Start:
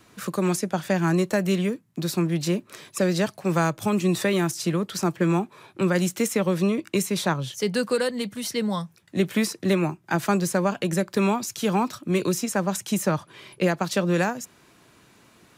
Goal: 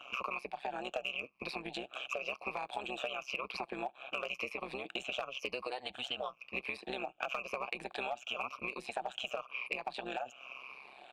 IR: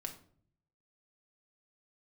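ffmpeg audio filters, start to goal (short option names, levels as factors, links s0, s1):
-filter_complex "[0:a]afftfilt=real='re*pow(10,14/40*sin(2*PI*(0.87*log(max(b,1)*sr/1024/100)/log(2)-(-0.69)*(pts-256)/sr)))':imag='im*pow(10,14/40*sin(2*PI*(0.87*log(max(b,1)*sr/1024/100)/log(2)-(-0.69)*(pts-256)/sr)))':win_size=1024:overlap=0.75,equalizer=f=2700:t=o:w=0.78:g=14,acrossover=split=180|4900[s0][s1][s2];[s0]acompressor=threshold=0.0141:ratio=4[s3];[s1]acompressor=threshold=0.0794:ratio=4[s4];[s2]acompressor=threshold=0.0251:ratio=4[s5];[s3][s4][s5]amix=inputs=3:normalize=0,highpass=f=44:p=1,agate=range=0.0224:threshold=0.00282:ratio=3:detection=peak,asplit=3[s6][s7][s8];[s6]bandpass=f=730:t=q:w=8,volume=1[s9];[s7]bandpass=f=1090:t=q:w=8,volume=0.501[s10];[s8]bandpass=f=2440:t=q:w=8,volume=0.355[s11];[s9][s10][s11]amix=inputs=3:normalize=0,aeval=exprs='clip(val(0),-1,0.0447)':c=same,tremolo=f=130:d=0.889,acompressor=threshold=0.00282:ratio=4,lowshelf=f=330:g=-4,atempo=1.4,volume=5.31"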